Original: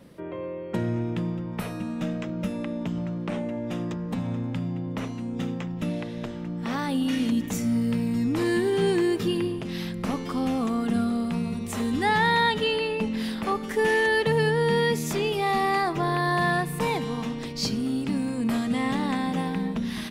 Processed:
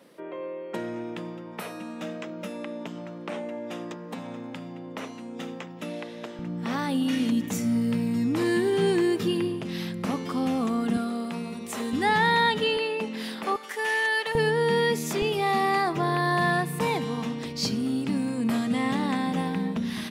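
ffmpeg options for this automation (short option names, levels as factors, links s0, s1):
-af "asetnsamples=n=441:p=0,asendcmd='6.39 highpass f 110;10.97 highpass f 280;11.93 highpass f 130;12.77 highpass f 300;13.56 highpass f 770;14.35 highpass f 180;15.22 highpass f 87',highpass=340"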